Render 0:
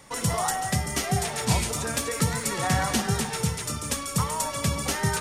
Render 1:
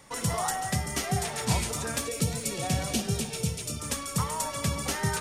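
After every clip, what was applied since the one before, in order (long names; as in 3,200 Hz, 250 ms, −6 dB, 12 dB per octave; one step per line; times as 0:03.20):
gain on a spectral selection 0:02.07–0:03.80, 740–2,200 Hz −10 dB
level −3 dB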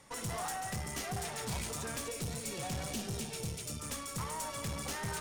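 tube saturation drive 31 dB, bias 0.55
level −3 dB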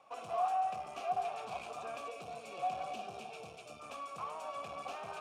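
formant filter a
level +10 dB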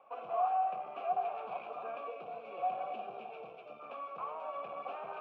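loudspeaker in its box 240–2,500 Hz, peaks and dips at 270 Hz −3 dB, 520 Hz +3 dB, 1,900 Hz −8 dB
level +1.5 dB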